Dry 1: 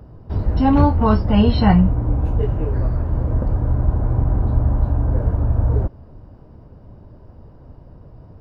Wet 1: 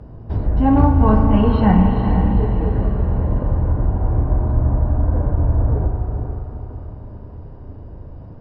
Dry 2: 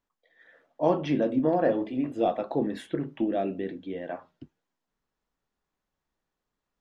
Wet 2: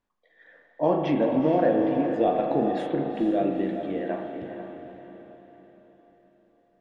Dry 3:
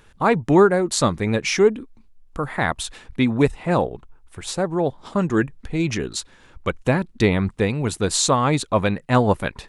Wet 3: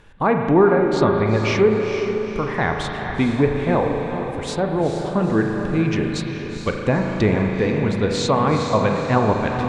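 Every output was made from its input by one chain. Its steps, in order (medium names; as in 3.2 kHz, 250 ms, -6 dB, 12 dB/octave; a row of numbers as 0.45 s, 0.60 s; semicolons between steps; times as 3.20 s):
low-pass 3.5 kHz 6 dB/octave; band-stop 1.3 kHz, Q 17; spring tank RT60 1.8 s, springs 37 ms, chirp 20 ms, DRR 4.5 dB; in parallel at -1.5 dB: compression, threshold -24 dBFS; on the sum: hard clipper -0.5 dBFS; low-pass that closes with the level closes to 2.4 kHz, closed at -11 dBFS; on a send: echo that smears into a reverb 456 ms, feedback 47%, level -7 dB; on the sum: trim -2.5 dB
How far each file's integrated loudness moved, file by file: +1.0 LU, +3.0 LU, +1.0 LU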